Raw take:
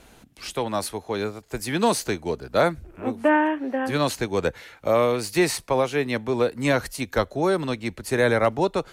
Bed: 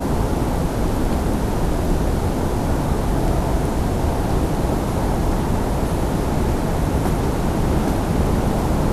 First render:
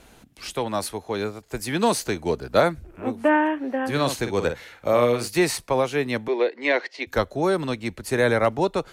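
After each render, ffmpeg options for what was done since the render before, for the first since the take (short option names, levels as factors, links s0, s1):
-filter_complex "[0:a]asettb=1/sr,asplit=3[s0][s1][s2];[s0]atrim=end=3.904[s3];[s1]atrim=start=3.9:end=5.28,asetpts=PTS-STARTPTS,afade=t=in:d=0.004:c=qsin,afade=t=out:st=1.376:d=0.004:c=qsin,asplit=2[s4][s5];[s5]adelay=50,volume=0.376[s6];[s4][s6]amix=inputs=2:normalize=0,atrim=end_sample=60858[s7];[s2]atrim=start=5.276[s8];[s3][s7]acrossfade=d=0.004:c1=hsin:c2=qsin[s9];[s9][s8]acrossfade=d=0.004:c1=qsin:c2=hsin,asettb=1/sr,asplit=3[s10][s11][s12];[s10]atrim=end=6.284[s13];[s11]atrim=start=6.28:end=7.07,asetpts=PTS-STARTPTS,afade=t=in:d=0.004:c=qsin,afade=t=out:st=0.786:d=0.004:c=qsin,highpass=f=340:w=0.5412,highpass=f=340:w=1.3066,equalizer=f=360:t=q:w=4:g=4,equalizer=f=1300:t=q:w=4:g=-8,equalizer=f=2000:t=q:w=4:g=9,lowpass=f=4500:w=0.5412,lowpass=f=4500:w=1.3066[s14];[s12]atrim=start=7.066[s15];[s13][s14]acrossfade=d=0.004:c1=hsin:c2=qsin[s16];[s16][s15]acrossfade=d=0.004:c1=qsin:c2=hsin,asplit=3[s17][s18][s19];[s17]atrim=end=2.162[s20];[s18]atrim=start=2.158:end=2.602,asetpts=PTS-STARTPTS,volume=1.41[s21];[s19]atrim=start=2.598[s22];[s20][s21]acrossfade=d=0.004:c1=hsin:c2=hsin[s23];[s23][s22]acrossfade=d=0.004:c1=hsin:c2=hsin"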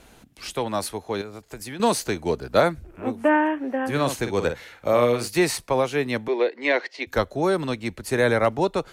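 -filter_complex "[0:a]asettb=1/sr,asplit=3[s0][s1][s2];[s0]atrim=end=1.214[s3];[s1]atrim=start=1.21:end=1.8,asetpts=PTS-STARTPTS,afade=t=in:d=0.004:c=qsin,afade=t=out:st=0.586:d=0.004:c=qsin,acompressor=threshold=0.0251:ratio=6:attack=3.2:release=140:knee=1:detection=peak[s4];[s2]atrim=start=1.796[s5];[s3][s4]acrossfade=d=0.004:c1=hsin:c2=qsin[s6];[s6][s5]acrossfade=d=0.004:c1=qsin:c2=hsin,asettb=1/sr,asplit=3[s7][s8][s9];[s7]atrim=end=3.174[s10];[s8]atrim=start=3.17:end=4.22,asetpts=PTS-STARTPTS,afade=t=in:d=0.004:c=qsin,afade=t=out:st=1.046:d=0.004:c=qsin,equalizer=f=4200:t=o:w=0.61:g=-5.5[s11];[s9]atrim=start=4.216[s12];[s10][s11]acrossfade=d=0.004:c1=hsin:c2=qsin[s13];[s13][s12]acrossfade=d=0.004:c1=qsin:c2=hsin"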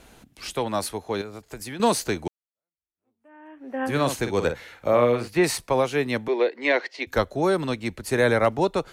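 -filter_complex "[0:a]asettb=1/sr,asplit=3[s0][s1][s2];[s0]atrim=end=4.524[s3];[s1]atrim=start=4.52:end=5.44,asetpts=PTS-STARTPTS,afade=t=in:d=0.004:c=qsin,afade=t=out:st=0.916:d=0.004:c=qsin,acrossover=split=3100[s4][s5];[s5]acompressor=threshold=0.00398:ratio=4:attack=1:release=60[s6];[s4][s6]amix=inputs=2:normalize=0[s7];[s2]atrim=start=5.436[s8];[s3][s7]acrossfade=d=0.004:c1=hsin:c2=qsin[s9];[s9][s8]acrossfade=d=0.004:c1=qsin:c2=hsin,asplit=2[s10][s11];[s10]atrim=end=2.28,asetpts=PTS-STARTPTS,afade=t=out:st=2.276:d=0.004:c=hsin[s12];[s11]atrim=start=2.28,asetpts=PTS-STARTPTS,afade=t=in:d=1.55:c=exp[s13];[s12][s13]concat=n=2:v=0:a=1"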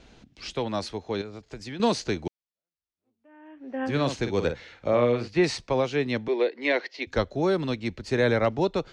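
-af "lowpass=f=5800:w=0.5412,lowpass=f=5800:w=1.3066,equalizer=f=1100:t=o:w=2.1:g=-5.5"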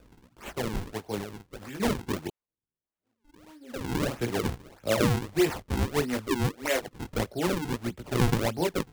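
-af "flanger=delay=16.5:depth=3.9:speed=0.25,acrusher=samples=42:mix=1:aa=0.000001:lfo=1:lforange=67.2:lforate=1.6"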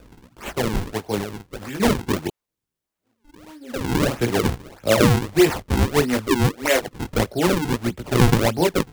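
-af "volume=2.66"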